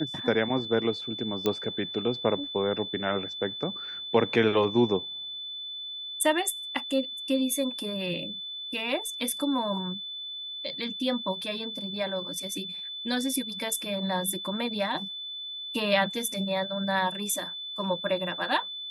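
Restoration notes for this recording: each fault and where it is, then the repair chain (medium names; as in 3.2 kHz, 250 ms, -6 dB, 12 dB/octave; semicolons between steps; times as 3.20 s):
whine 3.5 kHz -35 dBFS
1.46 s: pop -13 dBFS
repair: de-click; band-stop 3.5 kHz, Q 30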